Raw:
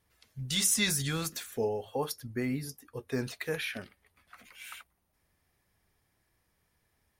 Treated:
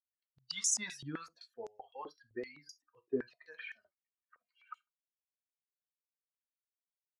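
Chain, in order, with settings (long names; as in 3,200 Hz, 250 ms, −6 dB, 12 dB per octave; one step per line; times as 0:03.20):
spectral dynamics exaggerated over time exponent 2
0:01.78–0:02.91: parametric band 3,300 Hz +13 dB 2.7 octaves
harmonic and percussive parts rebalanced harmonic −5 dB
high-frequency loss of the air 70 metres
convolution reverb, pre-delay 3 ms, DRR 9 dB
band-pass on a step sequencer 7.8 Hz 340–6,600 Hz
level +10.5 dB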